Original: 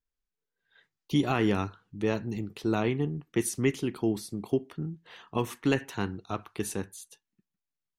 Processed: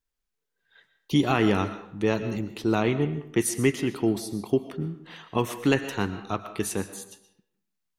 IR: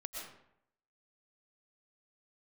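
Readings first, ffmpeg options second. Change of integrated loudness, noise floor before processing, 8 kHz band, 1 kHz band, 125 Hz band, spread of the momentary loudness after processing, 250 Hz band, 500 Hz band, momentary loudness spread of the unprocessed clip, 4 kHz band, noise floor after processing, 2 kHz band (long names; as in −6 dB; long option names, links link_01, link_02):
+4.0 dB, below −85 dBFS, +5.0 dB, +4.5 dB, +3.0 dB, 11 LU, +3.5 dB, +4.0 dB, 11 LU, +5.0 dB, −82 dBFS, +5.0 dB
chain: -filter_complex "[0:a]asplit=2[link_01][link_02];[1:a]atrim=start_sample=2205,lowshelf=frequency=200:gain=-10.5[link_03];[link_02][link_03]afir=irnorm=-1:irlink=0,volume=-4.5dB[link_04];[link_01][link_04]amix=inputs=2:normalize=0,volume=2dB"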